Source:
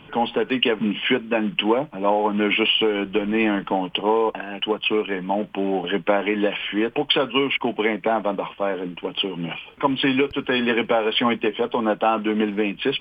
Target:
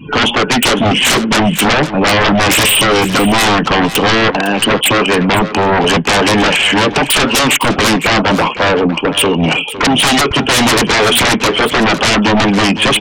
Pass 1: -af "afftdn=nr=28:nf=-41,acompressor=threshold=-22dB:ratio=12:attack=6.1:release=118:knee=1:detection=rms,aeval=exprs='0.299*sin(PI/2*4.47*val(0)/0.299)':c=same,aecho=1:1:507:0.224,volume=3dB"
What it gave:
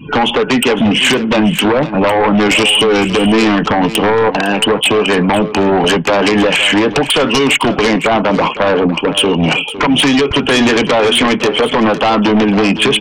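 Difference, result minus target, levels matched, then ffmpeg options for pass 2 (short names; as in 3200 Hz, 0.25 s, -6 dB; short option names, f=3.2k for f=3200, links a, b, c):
compressor: peak gain reduction +12 dB
-af "afftdn=nr=28:nf=-41,aeval=exprs='0.299*sin(PI/2*4.47*val(0)/0.299)':c=same,aecho=1:1:507:0.224,volume=3dB"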